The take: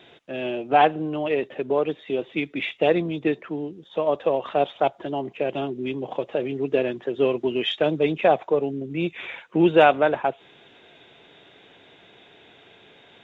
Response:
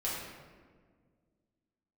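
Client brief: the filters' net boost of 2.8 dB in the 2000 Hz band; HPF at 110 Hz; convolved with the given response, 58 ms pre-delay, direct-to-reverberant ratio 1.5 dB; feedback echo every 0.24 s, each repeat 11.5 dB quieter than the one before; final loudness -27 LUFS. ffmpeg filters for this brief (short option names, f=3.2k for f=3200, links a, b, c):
-filter_complex "[0:a]highpass=110,equalizer=f=2k:t=o:g=4,aecho=1:1:240|480|720:0.266|0.0718|0.0194,asplit=2[a][b];[1:a]atrim=start_sample=2205,adelay=58[c];[b][c]afir=irnorm=-1:irlink=0,volume=-6.5dB[d];[a][d]amix=inputs=2:normalize=0,volume=-6.5dB"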